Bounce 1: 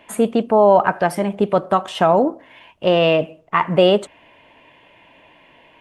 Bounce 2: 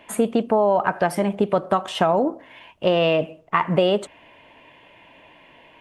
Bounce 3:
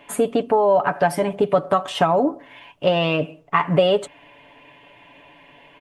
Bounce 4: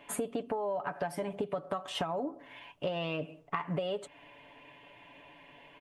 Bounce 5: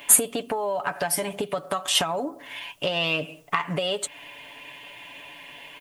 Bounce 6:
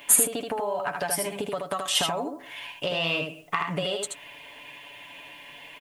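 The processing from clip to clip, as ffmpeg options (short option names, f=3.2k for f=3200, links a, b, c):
-af "acompressor=threshold=-15dB:ratio=4"
-af "aecho=1:1:7:0.61"
-af "acompressor=threshold=-25dB:ratio=6,volume=-6.5dB"
-af "crystalizer=i=8:c=0,volume=4.5dB"
-af "aecho=1:1:78:0.596,volume=-3dB"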